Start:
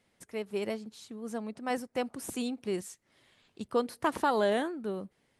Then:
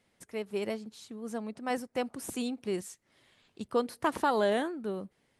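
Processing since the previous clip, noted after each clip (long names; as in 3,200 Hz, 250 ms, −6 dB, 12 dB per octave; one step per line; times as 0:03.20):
no processing that can be heard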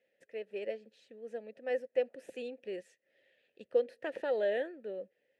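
formant filter e
level +6 dB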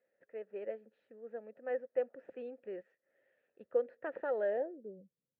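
low-pass filter sweep 1,300 Hz → 160 Hz, 0:04.49–0:05.04
level −4 dB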